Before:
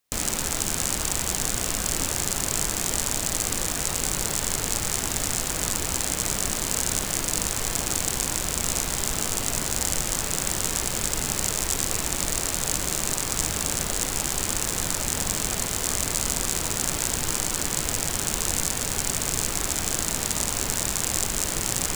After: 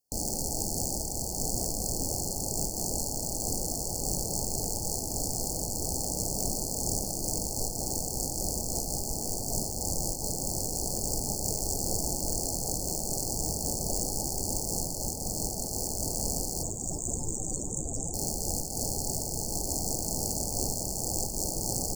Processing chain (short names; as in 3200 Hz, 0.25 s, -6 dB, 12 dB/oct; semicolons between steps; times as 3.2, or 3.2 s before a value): 16.63–18.14 loudest bins only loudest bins 64; soft clip -14.5 dBFS, distortion -10 dB; brick-wall FIR band-stop 890–4200 Hz; frequency-shifting echo 0.362 s, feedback 60%, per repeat +85 Hz, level -16 dB; noise-modulated level, depth 60%